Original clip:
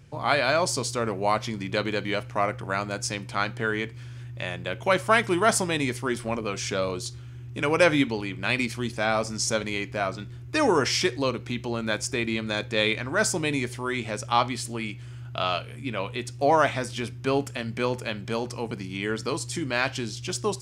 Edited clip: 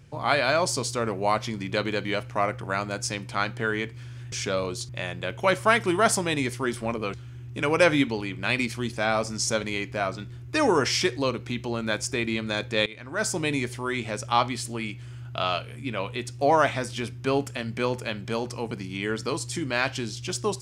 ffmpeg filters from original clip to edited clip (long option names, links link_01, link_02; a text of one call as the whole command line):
ffmpeg -i in.wav -filter_complex "[0:a]asplit=5[link_01][link_02][link_03][link_04][link_05];[link_01]atrim=end=4.322[link_06];[link_02]atrim=start=6.568:end=7.142[link_07];[link_03]atrim=start=4.318:end=6.572[link_08];[link_04]atrim=start=7.138:end=12.86,asetpts=PTS-STARTPTS,afade=type=out:start_time=5.718:duration=0.004:curve=hsin:silence=0.0749894[link_09];[link_05]atrim=start=12.86,asetpts=PTS-STARTPTS,afade=type=in:duration=0.57:silence=0.0749894[link_10];[link_06][link_07]acrossfade=duration=0.004:curve1=hsin:curve2=hsin[link_11];[link_11][link_08]acrossfade=duration=0.004:curve1=hsin:curve2=hsin[link_12];[link_09][link_10]concat=n=2:v=0:a=1[link_13];[link_12][link_13]acrossfade=duration=0.004:curve1=hsin:curve2=hsin" out.wav